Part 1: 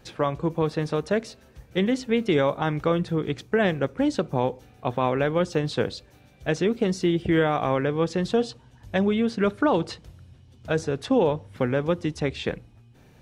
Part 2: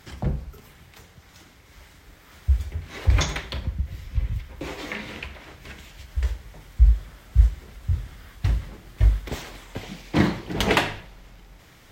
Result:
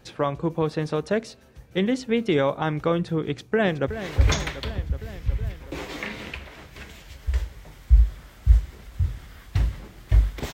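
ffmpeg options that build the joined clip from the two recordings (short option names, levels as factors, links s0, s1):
-filter_complex "[0:a]apad=whole_dur=10.53,atrim=end=10.53,atrim=end=3.882[s0];[1:a]atrim=start=2.768:end=9.42[s1];[s0][s1]acrossfade=d=0.004:c1=hsin:c2=hsin,asplit=2[s2][s3];[s3]afade=t=in:st=3.22:d=0.01,afade=t=out:st=3.88:d=0.01,aecho=0:1:370|740|1110|1480|1850|2220|2590|2960|3330|3700:0.266073|0.186251|0.130376|0.0912629|0.063884|0.0447188|0.0313032|0.0219122|0.0153386|0.010737[s4];[s2][s4]amix=inputs=2:normalize=0"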